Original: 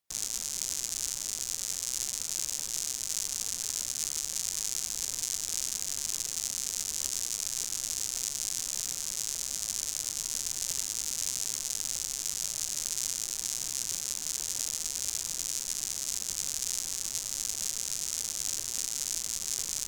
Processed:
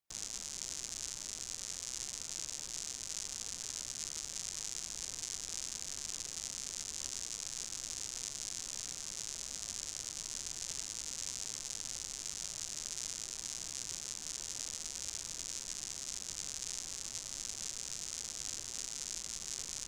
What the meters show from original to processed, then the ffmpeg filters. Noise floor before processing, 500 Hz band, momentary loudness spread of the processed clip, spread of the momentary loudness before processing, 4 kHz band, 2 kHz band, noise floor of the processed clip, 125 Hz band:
−39 dBFS, −4.0 dB, 1 LU, 1 LU, −7.0 dB, −5.0 dB, −47 dBFS, −4.0 dB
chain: -filter_complex "[0:a]acrossover=split=9300[link_01][link_02];[link_02]acompressor=threshold=-53dB:ratio=4:attack=1:release=60[link_03];[link_01][link_03]amix=inputs=2:normalize=0,equalizer=frequency=13000:width_type=o:width=2.6:gain=-3.5,volume=-4dB"

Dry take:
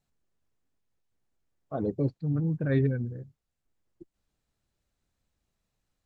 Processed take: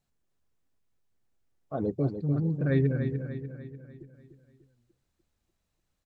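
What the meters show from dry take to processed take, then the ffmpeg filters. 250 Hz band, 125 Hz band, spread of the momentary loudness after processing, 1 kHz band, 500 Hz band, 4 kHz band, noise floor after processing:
+1.0 dB, +1.0 dB, 17 LU, +1.0 dB, +1.0 dB, can't be measured, −80 dBFS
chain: -af "aecho=1:1:296|592|888|1184|1480|1776:0.398|0.195|0.0956|0.0468|0.023|0.0112"

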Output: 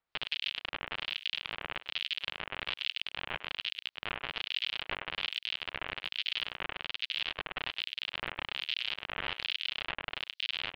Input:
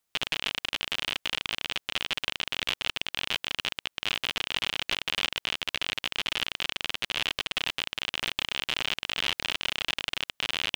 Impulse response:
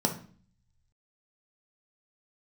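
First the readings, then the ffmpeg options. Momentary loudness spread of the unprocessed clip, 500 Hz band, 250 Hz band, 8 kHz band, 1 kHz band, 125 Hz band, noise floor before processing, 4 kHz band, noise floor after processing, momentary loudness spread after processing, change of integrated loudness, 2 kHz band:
2 LU, −5.5 dB, −8.5 dB, below −20 dB, −4.5 dB, −6.5 dB, −80 dBFS, −6.0 dB, below −85 dBFS, 4 LU, −6.0 dB, −5.5 dB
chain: -filter_complex "[0:a]acrossover=split=3300[link_01][link_02];[link_02]acompressor=threshold=-49dB:ratio=4:attack=1:release=60[link_03];[link_01][link_03]amix=inputs=2:normalize=0,highshelf=frequency=6300:width_type=q:width=3:gain=-12.5,asplit=2[link_04][link_05];[link_05]adelay=100,highpass=300,lowpass=3400,asoftclip=type=hard:threshold=-16dB,volume=-12dB[link_06];[link_04][link_06]amix=inputs=2:normalize=0,acrossover=split=2300[link_07][link_08];[link_07]aeval=exprs='val(0)*(1-1/2+1/2*cos(2*PI*1.2*n/s))':channel_layout=same[link_09];[link_08]aeval=exprs='val(0)*(1-1/2-1/2*cos(2*PI*1.2*n/s))':channel_layout=same[link_10];[link_09][link_10]amix=inputs=2:normalize=0,equalizer=frequency=230:width=0.92:gain=-5"

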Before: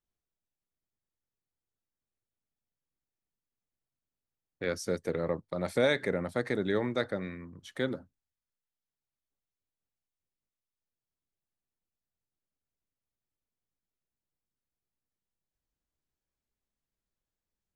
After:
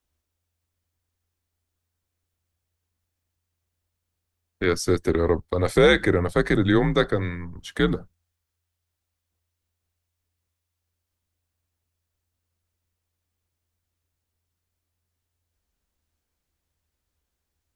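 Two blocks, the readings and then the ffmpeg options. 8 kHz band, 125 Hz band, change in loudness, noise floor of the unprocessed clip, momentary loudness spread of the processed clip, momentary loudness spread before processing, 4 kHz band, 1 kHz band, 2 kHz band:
+10.0 dB, +13.5 dB, +10.0 dB, below −85 dBFS, 12 LU, 12 LU, +10.5 dB, +11.0 dB, +10.0 dB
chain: -af "afreqshift=-85,apsyclip=18dB,volume=-7.5dB"

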